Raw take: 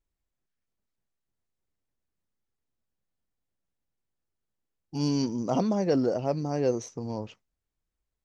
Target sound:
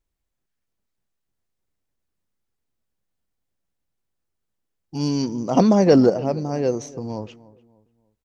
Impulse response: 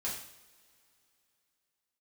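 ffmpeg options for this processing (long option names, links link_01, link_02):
-filter_complex "[0:a]asettb=1/sr,asplit=3[link_01][link_02][link_03];[link_01]atrim=end=5.574[link_04];[link_02]atrim=start=5.57:end=6.1,asetpts=PTS-STARTPTS,afade=type=in:duration=0.004:curve=qsin,afade=type=out:start_time=0.526:duration=0.004:curve=qsin,acontrast=87[link_05];[link_03]atrim=start=6.096[link_06];[link_04][link_05]acrossfade=duration=0.004:curve1=hsin:curve2=qsin[link_07];[link_07][link_06]acrossfade=duration=0.004:curve1=qsin:curve2=hsin,asplit=2[link_08][link_09];[link_09]adelay=295,lowpass=frequency=1400:poles=1,volume=-19dB,asplit=2[link_10][link_11];[link_11]adelay=295,lowpass=frequency=1400:poles=1,volume=0.38,asplit=2[link_12][link_13];[link_13]adelay=295,lowpass=frequency=1400:poles=1,volume=0.38[link_14];[link_08][link_10][link_12][link_14]amix=inputs=4:normalize=0,volume=4dB"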